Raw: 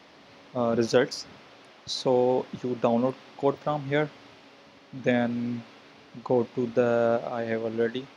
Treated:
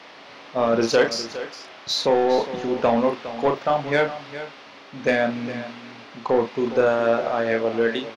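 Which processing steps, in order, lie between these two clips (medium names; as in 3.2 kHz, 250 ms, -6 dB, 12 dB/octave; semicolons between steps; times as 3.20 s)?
overdrive pedal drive 16 dB, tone 4 kHz, clips at -8 dBFS; doubling 35 ms -6 dB; delay 411 ms -13.5 dB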